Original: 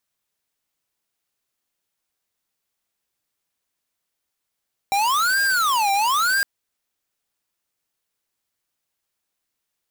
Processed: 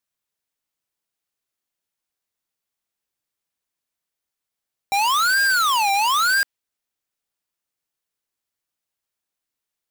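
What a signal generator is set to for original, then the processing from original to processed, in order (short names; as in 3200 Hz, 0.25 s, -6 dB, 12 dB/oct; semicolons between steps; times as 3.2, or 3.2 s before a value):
siren wail 788–1610 Hz 1/s square -19.5 dBFS 1.51 s
dynamic EQ 2800 Hz, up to +4 dB, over -35 dBFS, Q 0.88; upward expander 1.5:1, over -28 dBFS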